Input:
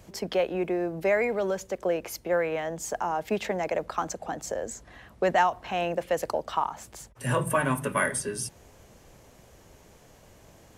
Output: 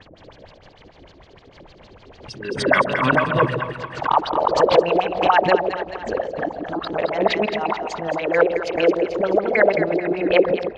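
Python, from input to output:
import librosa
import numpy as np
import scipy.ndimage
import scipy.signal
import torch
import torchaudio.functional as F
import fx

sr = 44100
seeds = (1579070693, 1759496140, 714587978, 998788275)

y = np.flip(x).copy()
y = scipy.signal.sosfilt(scipy.signal.butter(2, 6500.0, 'lowpass', fs=sr, output='sos'), y)
y = fx.low_shelf(y, sr, hz=60.0, db=2.5)
y = fx.hum_notches(y, sr, base_hz=60, count=9)
y = fx.level_steps(y, sr, step_db=9)
y = fx.filter_lfo_lowpass(y, sr, shape='sine', hz=6.6, low_hz=310.0, high_hz=4600.0, q=6.8)
y = fx.echo_split(y, sr, split_hz=710.0, low_ms=136, high_ms=218, feedback_pct=52, wet_db=-7)
y = fx.pre_swell(y, sr, db_per_s=92.0)
y = y * librosa.db_to_amplitude(6.0)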